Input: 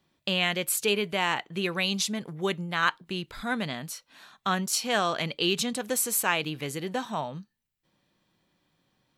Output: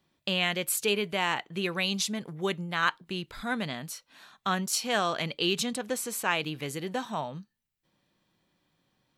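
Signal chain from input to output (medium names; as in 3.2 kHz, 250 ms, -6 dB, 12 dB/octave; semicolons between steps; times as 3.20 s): 5.76–6.31 s: treble shelf 7.5 kHz -11 dB; trim -1.5 dB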